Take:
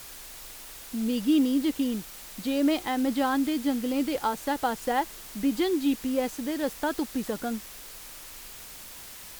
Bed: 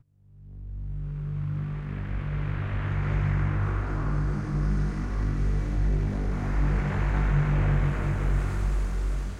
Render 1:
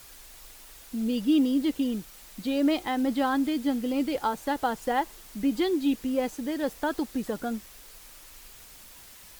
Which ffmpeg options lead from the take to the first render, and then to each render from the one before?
-af "afftdn=nr=6:nf=-44"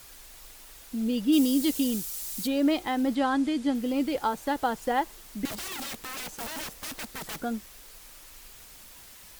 -filter_complex "[0:a]asplit=3[a][b][c];[a]afade=t=out:st=1.32:d=0.02[d];[b]bass=f=250:g=1,treble=f=4k:g=15,afade=t=in:st=1.32:d=0.02,afade=t=out:st=2.46:d=0.02[e];[c]afade=t=in:st=2.46:d=0.02[f];[d][e][f]amix=inputs=3:normalize=0,asettb=1/sr,asplit=3[g][h][i];[g]atrim=end=3.154[j];[h]atrim=start=3.15:end=3.75,asetpts=PTS-STARTPTS,afade=t=in:d=0.004:c=qsin,afade=t=out:st=0.596:d=0.004:c=qsin,lowpass=f=10k:w=0.5412,lowpass=f=10k:w=1.3066[k];[i]atrim=start=3.746[l];[j][k]acrossfade=d=0.004:c1=hsin:c2=qsin[m];[m][l]acrossfade=d=0.004:c1=qsin:c2=hsin,asettb=1/sr,asplit=3[n][o][p];[n]atrim=end=5.454[q];[o]atrim=start=5.45:end=7.41,asetpts=PTS-STARTPTS,afade=t=in:d=0.004:c=qsin,afade=t=out:st=1.956:d=0.004:c=qsin,aeval=exprs='(mod(37.6*val(0)+1,2)-1)/37.6':c=same[r];[p]atrim=start=7.406[s];[q][r]acrossfade=d=0.004:c1=hsin:c2=qsin[t];[t][s]acrossfade=d=0.004:c1=qsin:c2=hsin"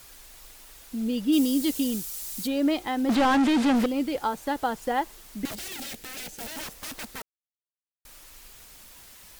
-filter_complex "[0:a]asettb=1/sr,asplit=3[a][b][c];[a]atrim=end=3.094[d];[b]atrim=start=3.09:end=3.86,asetpts=PTS-STARTPTS,afade=t=in:d=0.004:c=qsin,afade=t=out:st=0.766:d=0.004:c=qsin,asplit=2[e][f];[f]highpass=f=720:p=1,volume=33dB,asoftclip=type=tanh:threshold=-14.5dB[g];[e][g]amix=inputs=2:normalize=0,lowpass=f=2k:p=1,volume=-6dB[h];[c]atrim=start=3.856[i];[d][h]acrossfade=d=0.004:c1=hsin:c2=qsin[j];[j][i]acrossfade=d=0.004:c1=qsin:c2=hsin,asettb=1/sr,asplit=3[k][l][m];[k]atrim=end=5.544[n];[l]atrim=start=5.54:end=6.57,asetpts=PTS-STARTPTS,afade=t=in:d=0.004:c=qsin,afade=t=out:st=1.026:d=0.004:c=qsin,equalizer=f=1.1k:w=2.6:g=-11.5[o];[m]atrim=start=6.566[p];[n][o]acrossfade=d=0.004:c1=hsin:c2=qsin[q];[q][p]acrossfade=d=0.004:c1=qsin:c2=hsin,asplit=3[r][s][t];[r]atrim=end=7.22,asetpts=PTS-STARTPTS,afade=t=out:st=7.216:d=0.004:c=hsin[u];[s]atrim=start=7.22:end=8.05,asetpts=PTS-STARTPTS,volume=0[v];[t]atrim=start=8.05,asetpts=PTS-STARTPTS,afade=t=in:d=0.004:c=hsin[w];[u][v][w]concat=n=3:v=0:a=1"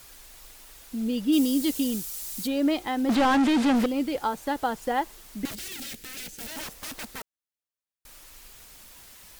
-filter_complex "[0:a]asettb=1/sr,asplit=3[a][b][c];[a]atrim=end=5.504[d];[b]atrim=start=5.5:end=6.49,asetpts=PTS-STARTPTS,afade=t=in:d=0.004:c=qsin,afade=t=out:st=0.986:d=0.004:c=qsin,equalizer=f=750:t=o:w=1.3:g=-8[e];[c]atrim=start=6.486[f];[d][e]acrossfade=d=0.004:c1=hsin:c2=qsin[g];[g][f]acrossfade=d=0.004:c1=qsin:c2=hsin"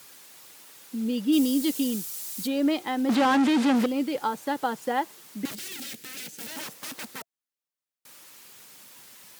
-af "highpass=f=130:w=0.5412,highpass=f=130:w=1.3066,bandreject=f=680:w=12"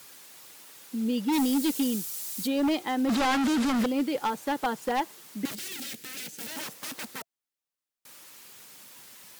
-af "aeval=exprs='0.1*(abs(mod(val(0)/0.1+3,4)-2)-1)':c=same"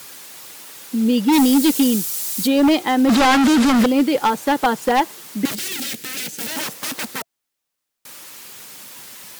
-af "volume=11dB"

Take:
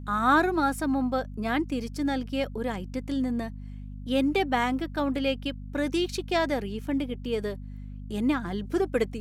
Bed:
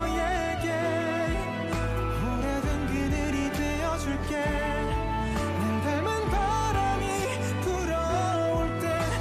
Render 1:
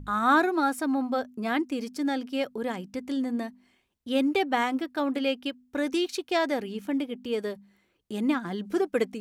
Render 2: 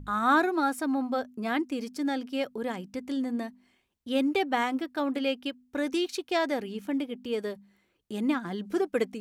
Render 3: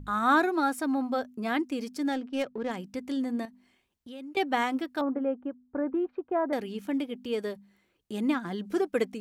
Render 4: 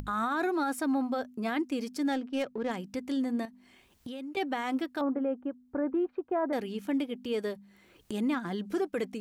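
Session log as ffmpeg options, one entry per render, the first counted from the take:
-af "bandreject=f=50:t=h:w=4,bandreject=f=100:t=h:w=4,bandreject=f=150:t=h:w=4,bandreject=f=200:t=h:w=4,bandreject=f=250:t=h:w=4"
-af "volume=-1.5dB"
-filter_complex "[0:a]asettb=1/sr,asplit=3[a][b][c];[a]atrim=end=2.124[d];[b]atrim=start=2.12:end=2.71,asetpts=PTS-STARTPTS,afade=t=in:d=0.004:c=qsin,afade=t=out:st=0.586:d=0.004:c=qsin,adynamicsmooth=sensitivity=7.5:basefreq=1.4k[e];[c]atrim=start=2.706[f];[d][e]acrossfade=d=0.004:c1=hsin:c2=qsin[g];[g][f]acrossfade=d=0.004:c1=qsin:c2=hsin,asettb=1/sr,asplit=3[h][i][j];[h]atrim=end=3.454[k];[i]atrim=start=3.45:end=4.37,asetpts=PTS-STARTPTS,afade=t=in:d=0.004:c=qsin,afade=t=out:st=0.916:d=0.004:c=qsin,acompressor=threshold=-45dB:ratio=3:attack=3.2:release=140:knee=1:detection=peak[l];[j]atrim=start=4.366[m];[k][l]acrossfade=d=0.004:c1=hsin:c2=qsin[n];[n][m]acrossfade=d=0.004:c1=qsin:c2=hsin,asettb=1/sr,asplit=3[o][p][q];[o]atrim=end=5.014[r];[p]atrim=start=5.01:end=6.53,asetpts=PTS-STARTPTS,afade=t=in:d=0.004:c=qsin,afade=t=out:st=1.516:d=0.004:c=qsin,lowpass=f=1.3k:w=0.5412,lowpass=f=1.3k:w=1.3066[s];[q]atrim=start=6.526[t];[r][s]acrossfade=d=0.004:c1=hsin:c2=qsin[u];[u][t]acrossfade=d=0.004:c1=qsin:c2=hsin"
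-af "alimiter=limit=-22.5dB:level=0:latency=1:release=22,acompressor=mode=upward:threshold=-35dB:ratio=2.5"

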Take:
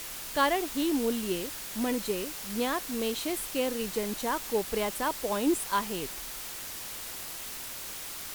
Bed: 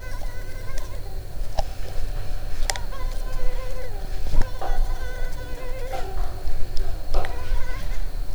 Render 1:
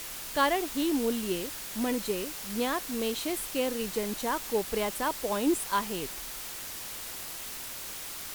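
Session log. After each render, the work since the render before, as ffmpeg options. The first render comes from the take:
-af anull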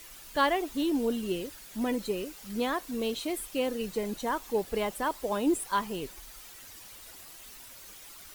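-af "afftdn=nr=11:nf=-40"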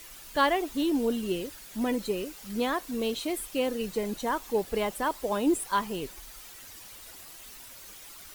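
-af "volume=1.5dB"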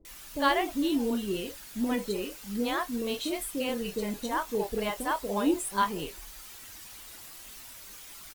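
-filter_complex "[0:a]asplit=2[a][b];[b]adelay=25,volume=-11dB[c];[a][c]amix=inputs=2:normalize=0,acrossover=split=510[d][e];[e]adelay=50[f];[d][f]amix=inputs=2:normalize=0"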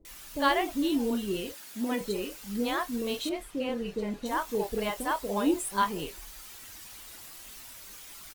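-filter_complex "[0:a]asettb=1/sr,asplit=3[a][b][c];[a]atrim=end=1.534[d];[b]atrim=start=1.53:end=2.01,asetpts=PTS-STARTPTS,afade=t=in:d=0.004:c=qsin,afade=t=out:st=0.476:d=0.004:c=qsin,highpass=220[e];[c]atrim=start=2.006[f];[d][e]acrossfade=d=0.004:c1=hsin:c2=qsin[g];[g][f]acrossfade=d=0.004:c1=qsin:c2=hsin,asettb=1/sr,asplit=3[h][i][j];[h]atrim=end=3.294[k];[i]atrim=start=3.29:end=4.26,asetpts=PTS-STARTPTS,afade=t=in:d=0.004:c=qsin,afade=t=out:st=0.966:d=0.004:c=qsin,aemphasis=mode=reproduction:type=75kf[l];[j]atrim=start=4.256[m];[k][l]acrossfade=d=0.004:c1=hsin:c2=qsin[n];[n][m]acrossfade=d=0.004:c1=qsin:c2=hsin"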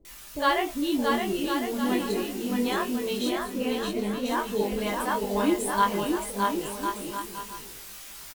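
-filter_complex "[0:a]asplit=2[a][b];[b]adelay=20,volume=-4dB[c];[a][c]amix=inputs=2:normalize=0,aecho=1:1:620|1054|1358|1570|1719:0.631|0.398|0.251|0.158|0.1"

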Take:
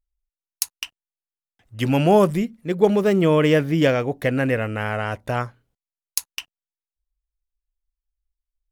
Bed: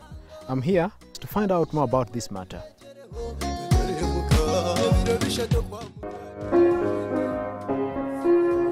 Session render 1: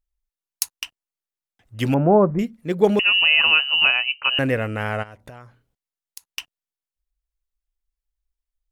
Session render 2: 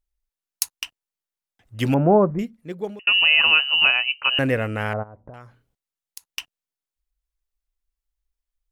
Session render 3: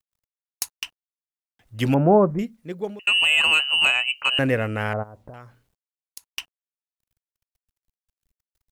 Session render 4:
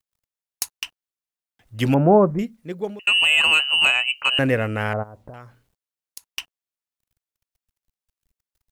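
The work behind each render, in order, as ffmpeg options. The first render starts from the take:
-filter_complex "[0:a]asettb=1/sr,asplit=3[a][b][c];[a]atrim=end=1.944[d];[b]atrim=start=1.94:end=2.39,asetpts=PTS-STARTPTS,afade=t=in:d=0.004:c=qsin,afade=t=out:st=0.446:d=0.004:c=qsin,lowpass=f=1.3k:w=0.5412,lowpass=f=1.3k:w=1.3066[e];[c]atrim=start=2.386[f];[d][e]acrossfade=d=0.004:c1=hsin:c2=qsin[g];[g][f]acrossfade=d=0.004:c1=qsin:c2=hsin,asettb=1/sr,asplit=3[h][i][j];[h]atrim=end=2.994[k];[i]atrim=start=2.99:end=4.39,asetpts=PTS-STARTPTS,afade=t=in:d=0.004:c=qsin,afade=t=out:st=1.396:d=0.004:c=qsin,lowpass=f=2.6k:t=q:w=0.5098,lowpass=f=2.6k:t=q:w=0.6013,lowpass=f=2.6k:t=q:w=0.9,lowpass=f=2.6k:t=q:w=2.563,afreqshift=-3100[l];[j]atrim=start=4.386[m];[k][l]acrossfade=d=0.004:c1=hsin:c2=qsin[n];[n][m]acrossfade=d=0.004:c1=qsin:c2=hsin,asplit=3[o][p][q];[o]afade=t=out:st=5.02:d=0.02[r];[p]acompressor=threshold=-37dB:ratio=10:attack=3.2:release=140:knee=1:detection=peak,afade=t=in:st=5.02:d=0.02,afade=t=out:st=6.29:d=0.02[s];[q]afade=t=in:st=6.29:d=0.02[t];[r][s][t]amix=inputs=3:normalize=0"
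-filter_complex "[0:a]asettb=1/sr,asplit=3[a][b][c];[a]atrim=end=4.934[d];[b]atrim=start=4.93:end=5.34,asetpts=PTS-STARTPTS,afade=t=in:d=0.004:c=qsin,afade=t=out:st=0.406:d=0.004:c=qsin,lowpass=f=1.1k:w=0.5412,lowpass=f=1.1k:w=1.3066[e];[c]atrim=start=5.336[f];[d][e]acrossfade=d=0.004:c1=hsin:c2=qsin[g];[g][f]acrossfade=d=0.004:c1=qsin:c2=hsin,asplit=2[h][i];[h]atrim=end=3.07,asetpts=PTS-STARTPTS,afade=t=out:st=2.08:d=0.99[j];[i]atrim=start=3.07,asetpts=PTS-STARTPTS,afade=t=in:d=0.004:c=hsin[k];[j][k]concat=n=2:v=0:a=1"
-filter_complex "[0:a]acrossover=split=1300[a][b];[b]asoftclip=type=tanh:threshold=-12.5dB[c];[a][c]amix=inputs=2:normalize=0,acrusher=bits=11:mix=0:aa=0.000001"
-af "volume=1.5dB"

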